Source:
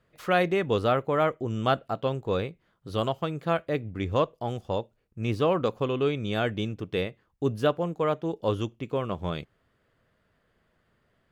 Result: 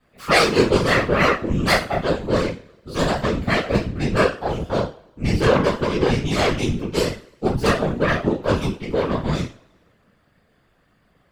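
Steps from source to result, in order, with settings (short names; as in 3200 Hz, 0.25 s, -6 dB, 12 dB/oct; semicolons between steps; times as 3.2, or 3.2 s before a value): self-modulated delay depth 0.4 ms; two-slope reverb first 0.34 s, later 1.5 s, from -28 dB, DRR -10 dB; whisperiser; gain -2 dB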